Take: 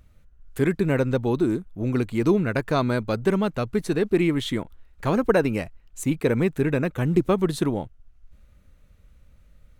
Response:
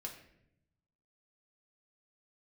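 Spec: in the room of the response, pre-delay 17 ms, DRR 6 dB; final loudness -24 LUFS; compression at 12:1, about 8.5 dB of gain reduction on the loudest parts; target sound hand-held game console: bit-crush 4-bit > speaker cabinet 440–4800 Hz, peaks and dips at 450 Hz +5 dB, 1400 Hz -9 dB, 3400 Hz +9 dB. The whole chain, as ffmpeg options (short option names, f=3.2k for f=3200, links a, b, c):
-filter_complex "[0:a]acompressor=threshold=-23dB:ratio=12,asplit=2[a][b];[1:a]atrim=start_sample=2205,adelay=17[c];[b][c]afir=irnorm=-1:irlink=0,volume=-3.5dB[d];[a][d]amix=inputs=2:normalize=0,acrusher=bits=3:mix=0:aa=0.000001,highpass=440,equalizer=f=450:t=q:w=4:g=5,equalizer=f=1.4k:t=q:w=4:g=-9,equalizer=f=3.4k:t=q:w=4:g=9,lowpass=f=4.8k:w=0.5412,lowpass=f=4.8k:w=1.3066,volume=4.5dB"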